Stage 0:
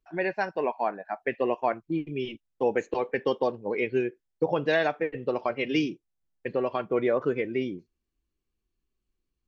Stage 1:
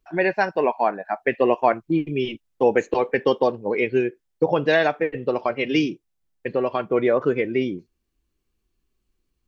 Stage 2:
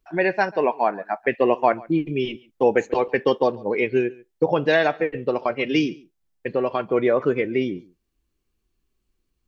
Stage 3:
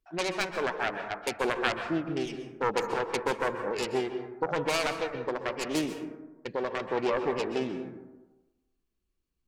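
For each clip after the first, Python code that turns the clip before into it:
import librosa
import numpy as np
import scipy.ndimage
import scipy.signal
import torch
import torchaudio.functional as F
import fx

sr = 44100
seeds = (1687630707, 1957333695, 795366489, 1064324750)

y1 = fx.rider(x, sr, range_db=10, speed_s=2.0)
y1 = F.gain(torch.from_numpy(y1), 6.0).numpy()
y2 = y1 + 10.0 ** (-23.0 / 20.0) * np.pad(y1, (int(140 * sr / 1000.0), 0))[:len(y1)]
y3 = fx.self_delay(y2, sr, depth_ms=0.65)
y3 = fx.rev_plate(y3, sr, seeds[0], rt60_s=1.1, hf_ratio=0.3, predelay_ms=115, drr_db=7.0)
y3 = F.gain(torch.from_numpy(y3), -8.5).numpy()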